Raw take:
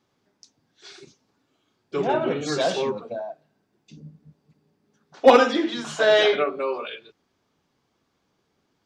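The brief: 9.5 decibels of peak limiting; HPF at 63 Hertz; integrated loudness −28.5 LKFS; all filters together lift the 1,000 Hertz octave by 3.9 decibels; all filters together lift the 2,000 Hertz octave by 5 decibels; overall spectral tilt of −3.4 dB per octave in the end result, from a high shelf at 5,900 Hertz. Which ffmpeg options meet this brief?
ffmpeg -i in.wav -af "highpass=63,equalizer=frequency=1000:width_type=o:gain=4,equalizer=frequency=2000:width_type=o:gain=4.5,highshelf=frequency=5900:gain=5.5,volume=-6dB,alimiter=limit=-15dB:level=0:latency=1" out.wav

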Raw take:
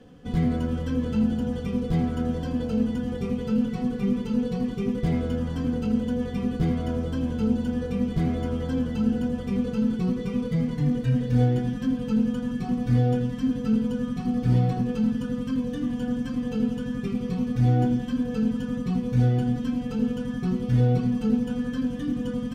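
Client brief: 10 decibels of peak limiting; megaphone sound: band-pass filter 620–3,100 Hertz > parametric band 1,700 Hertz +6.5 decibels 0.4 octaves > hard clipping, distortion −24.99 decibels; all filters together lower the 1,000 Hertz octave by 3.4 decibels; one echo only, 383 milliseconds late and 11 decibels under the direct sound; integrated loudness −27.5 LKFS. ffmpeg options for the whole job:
ffmpeg -i in.wav -af "equalizer=frequency=1000:width_type=o:gain=-3.5,alimiter=limit=-20.5dB:level=0:latency=1,highpass=620,lowpass=3100,equalizer=frequency=1700:width_type=o:width=0.4:gain=6.5,aecho=1:1:383:0.282,asoftclip=type=hard:threshold=-34.5dB,volume=14.5dB" out.wav

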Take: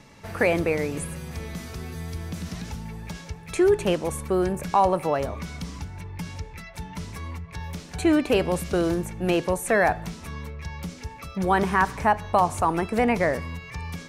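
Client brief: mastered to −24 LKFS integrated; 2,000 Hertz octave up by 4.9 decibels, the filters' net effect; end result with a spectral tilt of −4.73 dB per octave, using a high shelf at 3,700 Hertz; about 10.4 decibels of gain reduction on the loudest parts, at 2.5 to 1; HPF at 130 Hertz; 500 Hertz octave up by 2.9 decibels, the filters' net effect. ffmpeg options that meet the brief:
ffmpeg -i in.wav -af "highpass=130,equalizer=frequency=500:width_type=o:gain=3.5,equalizer=frequency=2000:width_type=o:gain=7.5,highshelf=frequency=3700:gain=-7,acompressor=threshold=-29dB:ratio=2.5,volume=8dB" out.wav

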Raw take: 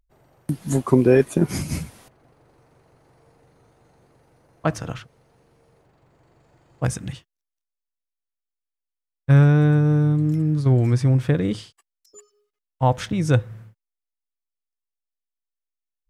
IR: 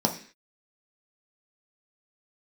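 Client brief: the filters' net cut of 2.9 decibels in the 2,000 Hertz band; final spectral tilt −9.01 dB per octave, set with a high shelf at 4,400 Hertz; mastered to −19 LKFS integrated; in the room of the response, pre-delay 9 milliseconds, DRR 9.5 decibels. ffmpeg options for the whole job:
-filter_complex "[0:a]equalizer=frequency=2000:width_type=o:gain=-3.5,highshelf=frequency=4400:gain=-3.5,asplit=2[link_01][link_02];[1:a]atrim=start_sample=2205,adelay=9[link_03];[link_02][link_03]afir=irnorm=-1:irlink=0,volume=-20.5dB[link_04];[link_01][link_04]amix=inputs=2:normalize=0,volume=-1dB"

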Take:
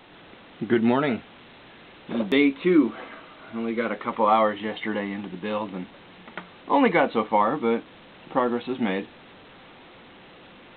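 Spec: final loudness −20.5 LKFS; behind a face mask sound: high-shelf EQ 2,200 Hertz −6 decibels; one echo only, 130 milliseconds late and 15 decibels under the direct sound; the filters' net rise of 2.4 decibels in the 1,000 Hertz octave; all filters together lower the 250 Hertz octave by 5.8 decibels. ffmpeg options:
ffmpeg -i in.wav -af "equalizer=frequency=250:width_type=o:gain=-7.5,equalizer=frequency=1000:width_type=o:gain=4.5,highshelf=frequency=2200:gain=-6,aecho=1:1:130:0.178,volume=4.5dB" out.wav

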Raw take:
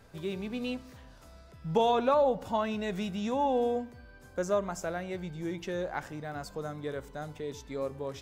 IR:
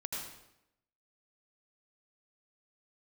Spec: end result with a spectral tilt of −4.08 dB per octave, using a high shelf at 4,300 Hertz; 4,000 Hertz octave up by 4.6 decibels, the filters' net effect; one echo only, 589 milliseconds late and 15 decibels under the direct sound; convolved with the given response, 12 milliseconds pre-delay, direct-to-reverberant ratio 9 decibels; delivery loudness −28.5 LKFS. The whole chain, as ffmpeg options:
-filter_complex "[0:a]equalizer=frequency=4000:width_type=o:gain=3.5,highshelf=frequency=4300:gain=4.5,aecho=1:1:589:0.178,asplit=2[link_01][link_02];[1:a]atrim=start_sample=2205,adelay=12[link_03];[link_02][link_03]afir=irnorm=-1:irlink=0,volume=-10dB[link_04];[link_01][link_04]amix=inputs=2:normalize=0,volume=3dB"

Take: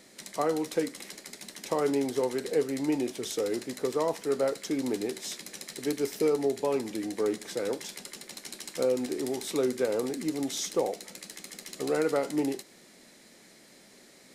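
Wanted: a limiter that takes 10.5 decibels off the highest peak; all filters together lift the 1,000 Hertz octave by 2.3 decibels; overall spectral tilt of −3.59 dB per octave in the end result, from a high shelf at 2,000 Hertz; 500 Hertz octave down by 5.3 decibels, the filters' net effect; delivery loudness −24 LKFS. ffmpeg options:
ffmpeg -i in.wav -af "equalizer=frequency=500:width_type=o:gain=-7.5,equalizer=frequency=1000:width_type=o:gain=4.5,highshelf=frequency=2000:gain=4.5,volume=11dB,alimiter=limit=-13dB:level=0:latency=1" out.wav

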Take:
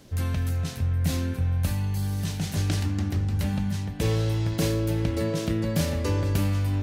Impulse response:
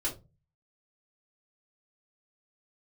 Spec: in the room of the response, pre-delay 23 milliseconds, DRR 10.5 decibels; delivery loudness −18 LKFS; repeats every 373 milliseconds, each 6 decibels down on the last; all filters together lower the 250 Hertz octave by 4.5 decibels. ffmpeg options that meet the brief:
-filter_complex "[0:a]equalizer=frequency=250:width_type=o:gain=-7,aecho=1:1:373|746|1119|1492|1865|2238:0.501|0.251|0.125|0.0626|0.0313|0.0157,asplit=2[link_01][link_02];[1:a]atrim=start_sample=2205,adelay=23[link_03];[link_02][link_03]afir=irnorm=-1:irlink=0,volume=-14.5dB[link_04];[link_01][link_04]amix=inputs=2:normalize=0,volume=9.5dB"

